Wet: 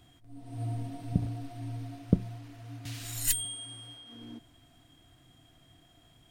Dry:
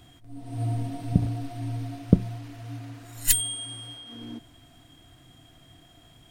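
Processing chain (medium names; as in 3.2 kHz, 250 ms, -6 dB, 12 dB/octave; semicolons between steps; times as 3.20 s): 2.85–3.45 s: three bands compressed up and down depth 70%; trim -6.5 dB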